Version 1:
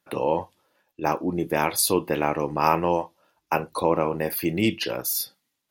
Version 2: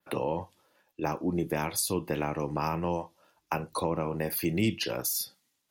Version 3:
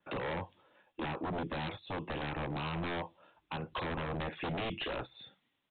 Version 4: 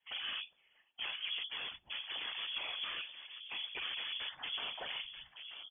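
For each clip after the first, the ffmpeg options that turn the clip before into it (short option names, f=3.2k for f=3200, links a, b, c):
-filter_complex "[0:a]adynamicequalizer=threshold=0.00708:dfrequency=7200:dqfactor=0.89:tfrequency=7200:tqfactor=0.89:attack=5:release=100:ratio=0.375:range=3:mode=boostabove:tftype=bell,acrossover=split=200[a][b];[b]acompressor=threshold=-29dB:ratio=4[c];[a][c]amix=inputs=2:normalize=0"
-af "alimiter=limit=-22dB:level=0:latency=1:release=322,aresample=8000,aeval=exprs='0.0224*(abs(mod(val(0)/0.0224+3,4)-2)-1)':c=same,aresample=44100,volume=2dB"
-filter_complex "[0:a]asplit=2[a][b];[b]adelay=932.9,volume=-8dB,highshelf=f=4k:g=-21[c];[a][c]amix=inputs=2:normalize=0,afftfilt=real='hypot(re,im)*cos(2*PI*random(0))':imag='hypot(re,im)*sin(2*PI*random(1))':win_size=512:overlap=0.75,lowpass=f=3k:t=q:w=0.5098,lowpass=f=3k:t=q:w=0.6013,lowpass=f=3k:t=q:w=0.9,lowpass=f=3k:t=q:w=2.563,afreqshift=-3500,volume=1.5dB"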